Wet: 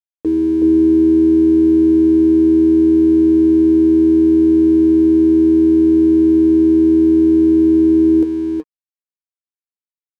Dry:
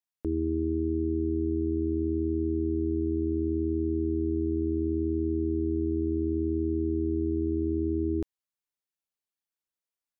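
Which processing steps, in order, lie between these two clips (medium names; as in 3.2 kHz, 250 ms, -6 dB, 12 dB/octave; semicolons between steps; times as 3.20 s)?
high-pass 200 Hz 6 dB/octave; peaking EQ 290 Hz -3 dB 0.77 oct; small resonant body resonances 310/450 Hz, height 17 dB, ringing for 90 ms; on a send: delay 372 ms -4 dB; on the sum: crossover distortion -47.5 dBFS; trim +6 dB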